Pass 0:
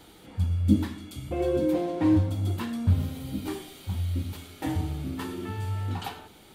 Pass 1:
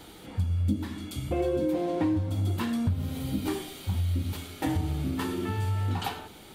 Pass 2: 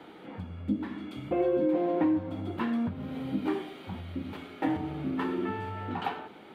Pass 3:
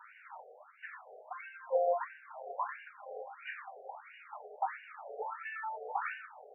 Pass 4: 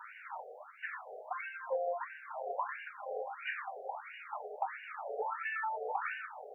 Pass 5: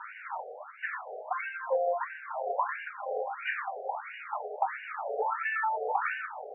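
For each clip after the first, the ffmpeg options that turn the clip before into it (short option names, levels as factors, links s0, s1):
-af "acompressor=threshold=0.0398:ratio=6,volume=1.58"
-filter_complex "[0:a]acrossover=split=160 2800:gain=0.0708 1 0.0631[s0][s1][s2];[s0][s1][s2]amix=inputs=3:normalize=0,volume=1.19"
-af "afftfilt=real='re*between(b*sr/1024,550*pow(2100/550,0.5+0.5*sin(2*PI*1.5*pts/sr))/1.41,550*pow(2100/550,0.5+0.5*sin(2*PI*1.5*pts/sr))*1.41)':imag='im*between(b*sr/1024,550*pow(2100/550,0.5+0.5*sin(2*PI*1.5*pts/sr))/1.41,550*pow(2100/550,0.5+0.5*sin(2*PI*1.5*pts/sr))*1.41)':win_size=1024:overlap=0.75,volume=1.5"
-af "acompressor=threshold=0.0126:ratio=6,volume=1.88"
-af "highpass=340,lowpass=2700,volume=2.24"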